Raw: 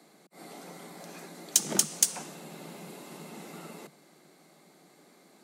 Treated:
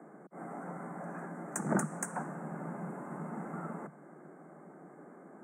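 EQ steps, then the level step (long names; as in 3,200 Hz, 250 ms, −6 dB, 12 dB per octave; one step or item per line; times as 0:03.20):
Chebyshev band-stop filter 1,600–8,400 Hz, order 3
dynamic equaliser 400 Hz, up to −7 dB, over −58 dBFS, Q 1.3
high-frequency loss of the air 160 metres
+8.0 dB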